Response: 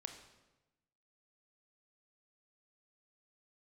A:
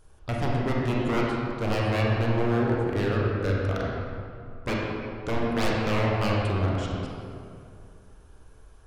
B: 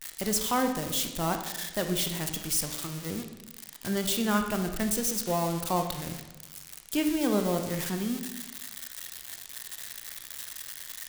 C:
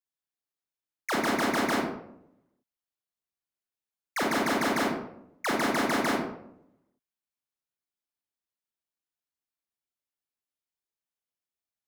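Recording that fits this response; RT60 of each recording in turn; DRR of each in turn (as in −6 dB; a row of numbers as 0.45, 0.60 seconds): B; 2.4, 1.1, 0.75 seconds; −4.0, 5.5, −2.5 decibels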